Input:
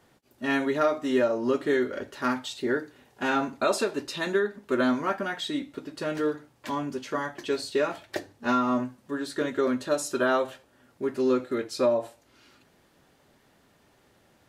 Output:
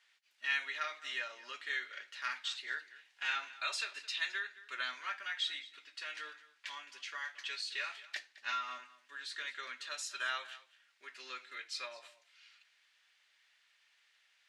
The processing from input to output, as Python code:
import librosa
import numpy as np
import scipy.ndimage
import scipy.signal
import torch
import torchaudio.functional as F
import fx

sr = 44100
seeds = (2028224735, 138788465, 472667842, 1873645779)

y = fx.ladder_bandpass(x, sr, hz=2700.0, resonance_pct=30)
y = fx.high_shelf(y, sr, hz=2400.0, db=9.0)
y = y + 10.0 ** (-18.0 / 20.0) * np.pad(y, (int(216 * sr / 1000.0), 0))[:len(y)]
y = y * librosa.db_to_amplitude(4.0)